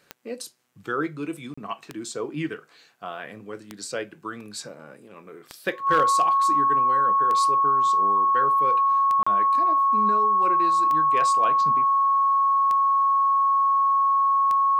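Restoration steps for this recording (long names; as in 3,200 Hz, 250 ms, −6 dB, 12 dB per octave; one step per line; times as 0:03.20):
clipped peaks rebuilt −12 dBFS
click removal
notch filter 1,100 Hz, Q 30
repair the gap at 0:01.54/0:09.23, 35 ms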